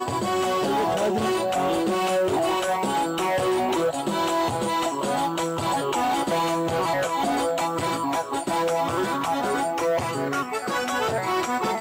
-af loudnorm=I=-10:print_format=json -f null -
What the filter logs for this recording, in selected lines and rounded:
"input_i" : "-24.4",
"input_tp" : "-15.4",
"input_lra" : "1.5",
"input_thresh" : "-34.4",